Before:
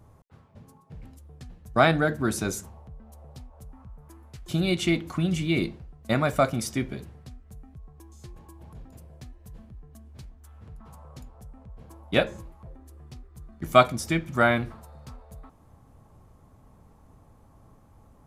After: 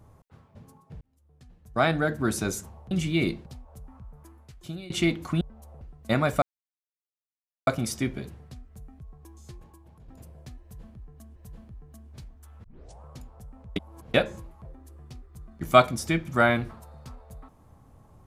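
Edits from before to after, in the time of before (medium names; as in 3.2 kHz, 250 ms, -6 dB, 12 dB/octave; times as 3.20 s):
1.01–2.28 s: fade in
2.91–3.31 s: swap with 5.26–5.81 s
4.00–4.75 s: fade out, to -23.5 dB
6.42 s: insert silence 1.25 s
8.25–8.83 s: fade out quadratic, to -8 dB
9.37–10.11 s: loop, 2 plays
10.65 s: tape start 0.40 s
11.77–12.15 s: reverse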